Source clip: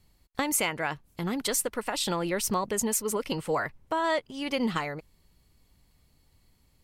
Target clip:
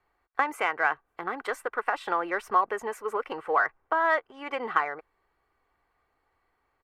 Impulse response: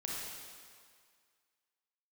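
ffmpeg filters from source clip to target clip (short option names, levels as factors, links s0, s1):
-filter_complex "[0:a]acrossover=split=420 2400:gain=0.0891 1 0.1[s0][s1][s2];[s0][s1][s2]amix=inputs=3:normalize=0,aecho=1:1:2.6:0.35,asplit=2[s3][s4];[s4]adynamicsmooth=sensitivity=4:basefreq=1800,volume=0.708[s5];[s3][s5]amix=inputs=2:normalize=0,equalizer=f=1400:t=o:w=1.2:g=9,volume=0.708"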